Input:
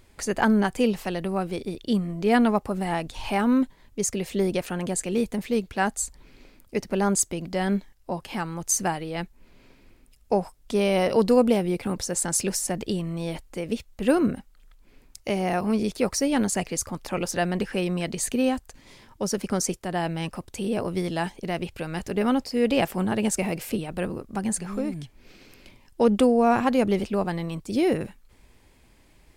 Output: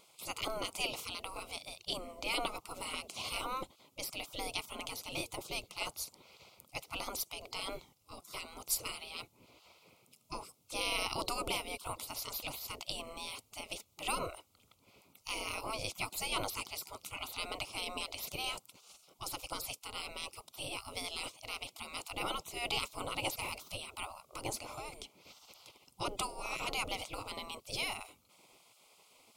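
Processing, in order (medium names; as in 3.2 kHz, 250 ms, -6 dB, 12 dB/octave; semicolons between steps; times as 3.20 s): spectral gate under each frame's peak -20 dB weak; Butterworth band-stop 1.7 kHz, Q 2; trim +1.5 dB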